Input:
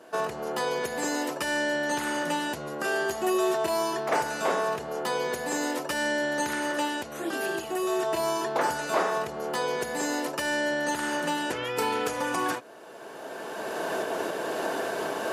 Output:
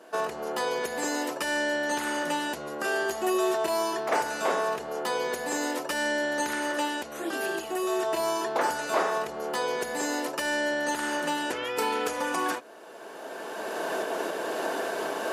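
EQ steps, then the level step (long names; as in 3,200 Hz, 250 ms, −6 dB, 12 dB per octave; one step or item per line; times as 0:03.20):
parametric band 110 Hz −14.5 dB 0.83 octaves
0.0 dB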